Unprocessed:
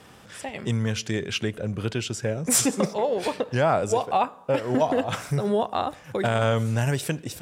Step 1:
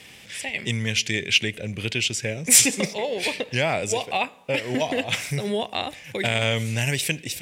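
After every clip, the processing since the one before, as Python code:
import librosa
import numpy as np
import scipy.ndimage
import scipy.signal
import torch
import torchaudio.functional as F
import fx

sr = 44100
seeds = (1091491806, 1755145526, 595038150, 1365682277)

y = fx.high_shelf_res(x, sr, hz=1700.0, db=8.5, q=3.0)
y = y * 10.0 ** (-2.0 / 20.0)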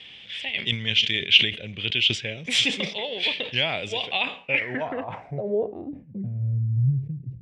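y = fx.filter_sweep_lowpass(x, sr, from_hz=3300.0, to_hz=130.0, start_s=4.33, end_s=6.43, q=5.5)
y = fx.sustainer(y, sr, db_per_s=140.0)
y = y * 10.0 ** (-6.5 / 20.0)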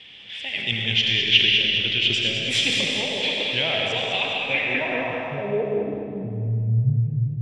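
y = fx.echo_feedback(x, sr, ms=204, feedback_pct=52, wet_db=-6.0)
y = fx.rev_freeverb(y, sr, rt60_s=2.0, hf_ratio=0.9, predelay_ms=45, drr_db=0.5)
y = y * 10.0 ** (-1.0 / 20.0)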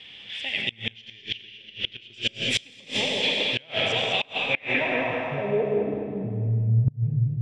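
y = fx.gate_flip(x, sr, shuts_db=-11.0, range_db=-27)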